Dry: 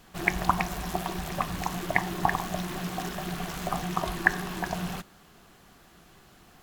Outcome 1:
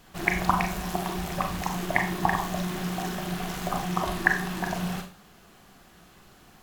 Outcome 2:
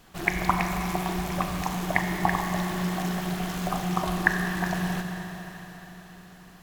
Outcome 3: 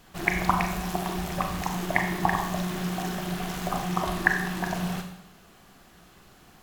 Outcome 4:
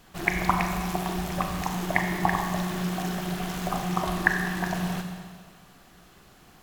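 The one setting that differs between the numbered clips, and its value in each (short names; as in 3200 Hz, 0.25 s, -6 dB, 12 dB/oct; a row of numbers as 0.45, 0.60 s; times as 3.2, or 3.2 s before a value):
Schroeder reverb, RT60: 0.35, 4.4, 0.74, 1.7 s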